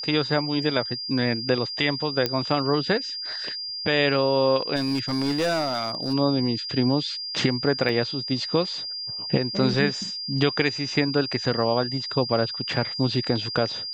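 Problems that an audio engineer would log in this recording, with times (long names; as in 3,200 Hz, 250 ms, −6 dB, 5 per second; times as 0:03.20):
whistle 4,800 Hz −30 dBFS
0:02.26: click −9 dBFS
0:04.75–0:06.14: clipping −20 dBFS
0:07.89: drop-out 2.5 ms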